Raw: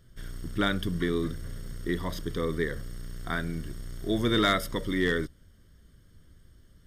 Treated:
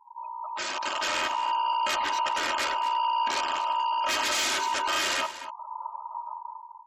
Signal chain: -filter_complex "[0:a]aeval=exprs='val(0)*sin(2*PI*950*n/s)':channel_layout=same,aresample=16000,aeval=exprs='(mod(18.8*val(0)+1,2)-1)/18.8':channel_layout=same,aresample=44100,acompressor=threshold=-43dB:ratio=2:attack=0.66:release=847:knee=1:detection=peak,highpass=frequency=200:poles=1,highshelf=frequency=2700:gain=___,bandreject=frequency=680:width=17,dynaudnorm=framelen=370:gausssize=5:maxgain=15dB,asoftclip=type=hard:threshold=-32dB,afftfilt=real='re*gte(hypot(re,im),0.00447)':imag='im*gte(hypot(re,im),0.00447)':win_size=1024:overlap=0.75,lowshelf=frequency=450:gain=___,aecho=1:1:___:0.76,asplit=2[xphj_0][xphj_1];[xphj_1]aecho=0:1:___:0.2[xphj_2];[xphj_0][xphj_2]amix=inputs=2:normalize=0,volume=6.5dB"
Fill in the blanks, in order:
-7, -12, 3.2, 239